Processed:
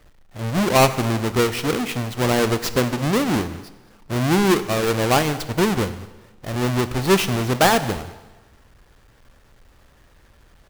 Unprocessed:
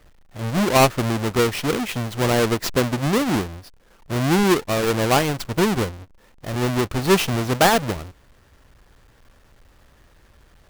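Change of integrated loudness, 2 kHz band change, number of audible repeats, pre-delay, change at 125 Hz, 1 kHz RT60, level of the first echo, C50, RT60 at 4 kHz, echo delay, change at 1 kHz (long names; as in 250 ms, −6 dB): 0.0 dB, +0.5 dB, 1, 6 ms, +0.5 dB, 1.2 s, −22.0 dB, 13.5 dB, 1.1 s, 212 ms, 0.0 dB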